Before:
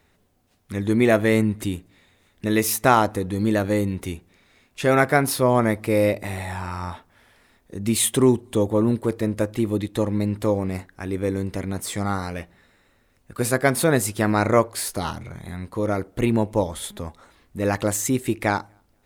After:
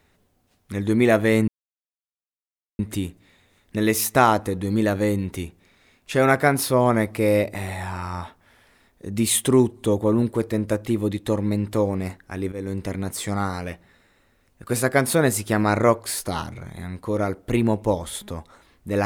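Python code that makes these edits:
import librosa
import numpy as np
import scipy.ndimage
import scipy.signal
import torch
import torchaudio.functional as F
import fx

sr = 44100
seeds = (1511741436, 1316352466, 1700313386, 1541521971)

y = fx.edit(x, sr, fx.insert_silence(at_s=1.48, length_s=1.31),
    fx.fade_in_from(start_s=11.21, length_s=0.27, floor_db=-13.0), tone=tone)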